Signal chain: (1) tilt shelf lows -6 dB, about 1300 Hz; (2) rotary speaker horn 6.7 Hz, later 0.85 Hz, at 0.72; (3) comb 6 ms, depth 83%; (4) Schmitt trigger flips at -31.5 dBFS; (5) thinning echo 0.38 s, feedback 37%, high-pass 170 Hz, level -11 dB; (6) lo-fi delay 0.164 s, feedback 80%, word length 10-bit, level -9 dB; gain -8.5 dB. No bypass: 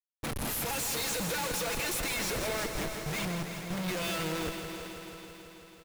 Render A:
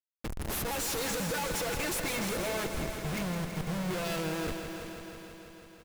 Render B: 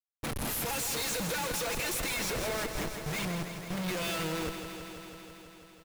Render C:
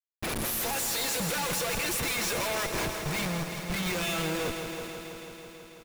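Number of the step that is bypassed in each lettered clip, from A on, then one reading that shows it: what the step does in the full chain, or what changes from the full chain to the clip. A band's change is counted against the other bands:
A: 1, 4 kHz band -3.0 dB; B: 5, momentary loudness spread change +1 LU; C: 2, loudness change +3.0 LU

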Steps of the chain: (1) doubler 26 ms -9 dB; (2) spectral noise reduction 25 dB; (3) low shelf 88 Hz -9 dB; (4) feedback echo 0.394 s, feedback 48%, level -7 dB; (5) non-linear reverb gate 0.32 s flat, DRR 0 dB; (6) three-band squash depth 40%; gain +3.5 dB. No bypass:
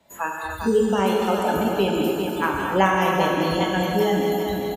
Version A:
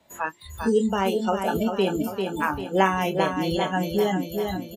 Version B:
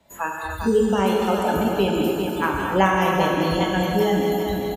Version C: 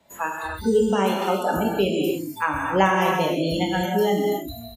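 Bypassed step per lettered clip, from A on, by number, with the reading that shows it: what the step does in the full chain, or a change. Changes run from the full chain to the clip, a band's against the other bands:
5, momentary loudness spread change +2 LU; 3, 125 Hz band +2.0 dB; 4, momentary loudness spread change +2 LU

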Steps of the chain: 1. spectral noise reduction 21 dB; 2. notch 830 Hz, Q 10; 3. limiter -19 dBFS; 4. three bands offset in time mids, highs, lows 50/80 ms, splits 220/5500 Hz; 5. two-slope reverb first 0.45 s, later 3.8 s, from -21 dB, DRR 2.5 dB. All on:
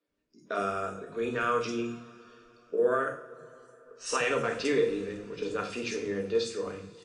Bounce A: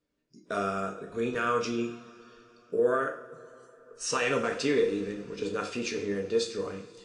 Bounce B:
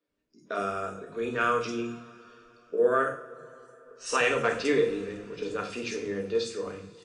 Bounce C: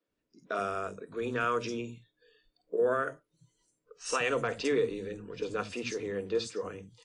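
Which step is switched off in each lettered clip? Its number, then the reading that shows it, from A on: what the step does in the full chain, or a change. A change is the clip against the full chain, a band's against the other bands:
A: 4, momentary loudness spread change -2 LU; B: 3, crest factor change +1.5 dB; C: 5, 125 Hz band +1.5 dB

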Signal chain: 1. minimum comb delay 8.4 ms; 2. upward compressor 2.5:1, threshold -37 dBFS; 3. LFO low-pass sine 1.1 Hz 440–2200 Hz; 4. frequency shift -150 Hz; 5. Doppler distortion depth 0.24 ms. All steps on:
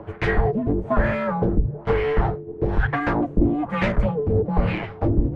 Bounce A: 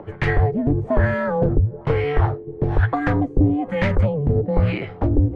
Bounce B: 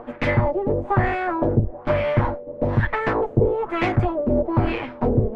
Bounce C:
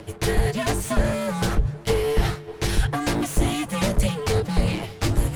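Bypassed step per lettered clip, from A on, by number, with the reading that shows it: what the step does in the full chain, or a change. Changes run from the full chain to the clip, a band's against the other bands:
1, 125 Hz band +4.5 dB; 4, 250 Hz band -2.0 dB; 3, 4 kHz band +13.5 dB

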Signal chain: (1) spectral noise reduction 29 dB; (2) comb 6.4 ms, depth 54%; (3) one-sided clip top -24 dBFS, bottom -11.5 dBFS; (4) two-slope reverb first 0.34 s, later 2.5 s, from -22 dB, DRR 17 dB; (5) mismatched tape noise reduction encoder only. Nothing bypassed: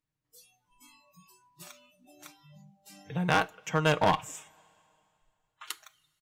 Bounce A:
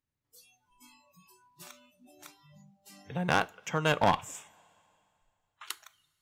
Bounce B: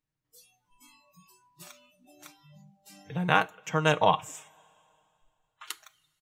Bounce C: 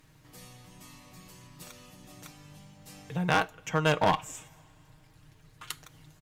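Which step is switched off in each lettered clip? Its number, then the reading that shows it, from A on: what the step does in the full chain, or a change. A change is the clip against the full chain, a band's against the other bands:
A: 2, 125 Hz band -2.0 dB; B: 3, distortion -10 dB; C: 1, momentary loudness spread change +6 LU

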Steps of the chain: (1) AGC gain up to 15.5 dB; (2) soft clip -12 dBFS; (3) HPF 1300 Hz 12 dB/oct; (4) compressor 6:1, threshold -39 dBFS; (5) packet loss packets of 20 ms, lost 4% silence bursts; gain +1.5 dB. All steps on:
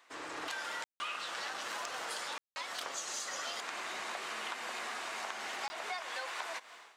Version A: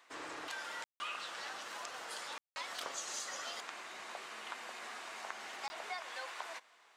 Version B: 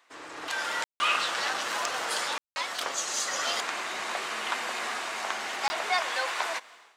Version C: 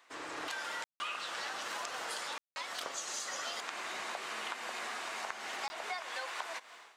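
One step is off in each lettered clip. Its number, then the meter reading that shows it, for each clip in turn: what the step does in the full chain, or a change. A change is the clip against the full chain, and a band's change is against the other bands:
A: 1, crest factor change +2.0 dB; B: 4, mean gain reduction 8.0 dB; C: 2, distortion -17 dB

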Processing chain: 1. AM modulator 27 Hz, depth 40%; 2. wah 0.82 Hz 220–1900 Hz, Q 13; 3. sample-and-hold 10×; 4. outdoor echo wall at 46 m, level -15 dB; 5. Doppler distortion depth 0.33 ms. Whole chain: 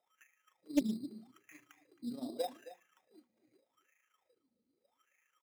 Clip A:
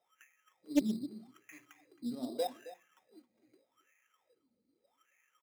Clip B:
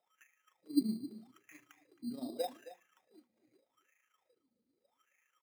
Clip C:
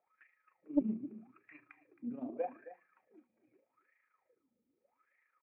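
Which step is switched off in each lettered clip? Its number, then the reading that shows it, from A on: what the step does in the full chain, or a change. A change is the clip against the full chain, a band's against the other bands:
1, momentary loudness spread change +2 LU; 5, 2 kHz band -3.0 dB; 3, distortion -12 dB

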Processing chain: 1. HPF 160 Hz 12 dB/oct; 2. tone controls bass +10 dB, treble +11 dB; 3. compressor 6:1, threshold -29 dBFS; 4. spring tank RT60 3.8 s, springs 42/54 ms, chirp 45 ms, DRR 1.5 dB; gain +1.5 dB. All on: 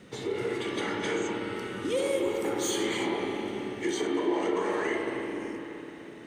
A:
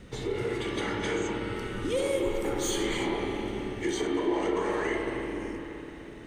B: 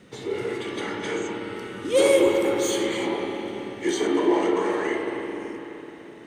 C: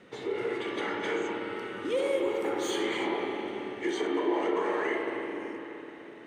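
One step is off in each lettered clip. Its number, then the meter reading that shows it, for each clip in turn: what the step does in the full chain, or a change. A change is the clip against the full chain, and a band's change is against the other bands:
1, 125 Hz band +6.0 dB; 3, mean gain reduction 2.0 dB; 2, 8 kHz band -7.0 dB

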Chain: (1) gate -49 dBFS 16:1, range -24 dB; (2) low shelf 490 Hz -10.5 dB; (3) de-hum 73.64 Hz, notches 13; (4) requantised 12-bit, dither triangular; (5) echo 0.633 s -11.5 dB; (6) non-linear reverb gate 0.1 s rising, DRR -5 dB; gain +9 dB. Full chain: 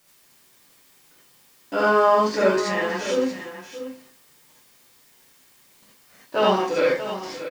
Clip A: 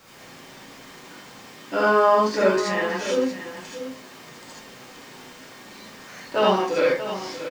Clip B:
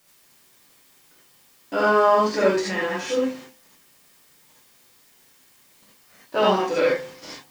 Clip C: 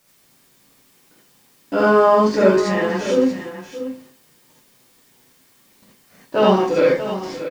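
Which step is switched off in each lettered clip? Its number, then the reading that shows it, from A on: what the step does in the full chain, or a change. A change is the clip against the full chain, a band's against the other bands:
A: 1, momentary loudness spread change +5 LU; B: 5, momentary loudness spread change -6 LU; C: 2, 125 Hz band +7.5 dB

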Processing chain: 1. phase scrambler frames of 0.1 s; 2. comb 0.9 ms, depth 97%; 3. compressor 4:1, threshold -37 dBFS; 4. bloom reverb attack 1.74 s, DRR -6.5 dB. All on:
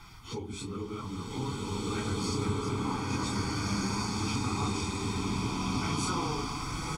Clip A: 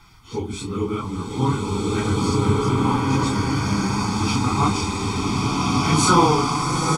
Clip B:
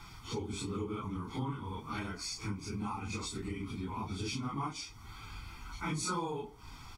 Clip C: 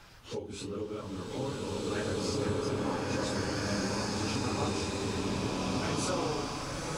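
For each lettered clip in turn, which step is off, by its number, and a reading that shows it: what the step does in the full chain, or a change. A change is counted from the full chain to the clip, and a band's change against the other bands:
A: 3, mean gain reduction 8.5 dB; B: 4, momentary loudness spread change +4 LU; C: 2, 500 Hz band +6.0 dB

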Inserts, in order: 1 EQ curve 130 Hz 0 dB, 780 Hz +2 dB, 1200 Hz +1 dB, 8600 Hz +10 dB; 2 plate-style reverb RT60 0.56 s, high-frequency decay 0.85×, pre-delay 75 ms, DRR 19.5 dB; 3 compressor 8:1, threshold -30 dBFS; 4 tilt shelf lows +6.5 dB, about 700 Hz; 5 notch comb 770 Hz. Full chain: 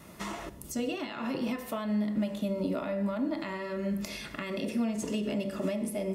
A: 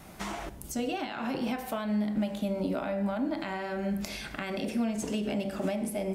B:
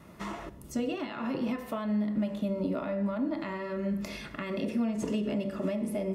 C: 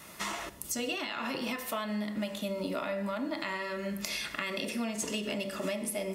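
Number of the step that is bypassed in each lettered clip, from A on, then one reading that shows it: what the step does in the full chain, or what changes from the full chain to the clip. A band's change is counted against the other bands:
5, 1 kHz band +3.0 dB; 1, 4 kHz band -3.5 dB; 4, 125 Hz band -9.0 dB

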